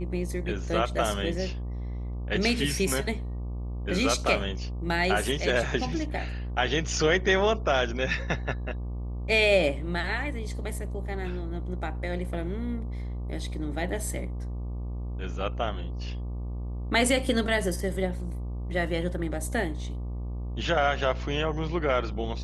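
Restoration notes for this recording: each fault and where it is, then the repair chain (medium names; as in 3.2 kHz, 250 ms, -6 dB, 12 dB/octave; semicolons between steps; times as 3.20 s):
buzz 60 Hz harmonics 20 -33 dBFS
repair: de-hum 60 Hz, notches 20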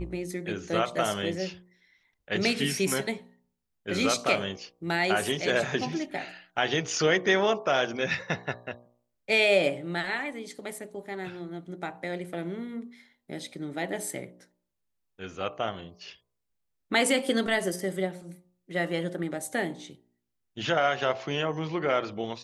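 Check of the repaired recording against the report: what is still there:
nothing left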